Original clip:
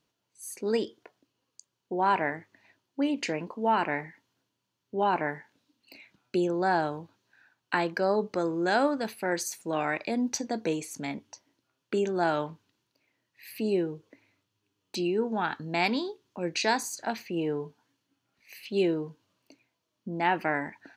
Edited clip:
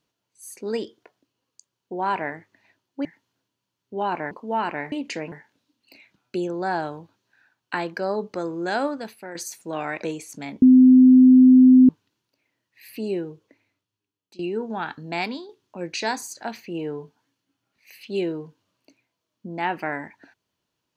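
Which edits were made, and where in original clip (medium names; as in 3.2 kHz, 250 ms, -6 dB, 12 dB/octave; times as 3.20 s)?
3.05–3.45 s: swap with 4.06–5.32 s
8.88–9.35 s: fade out, to -10.5 dB
10.03–10.65 s: delete
11.24–12.51 s: bleep 256 Hz -8 dBFS
13.88–15.01 s: fade out, to -20.5 dB
15.79–16.11 s: fade out, to -8 dB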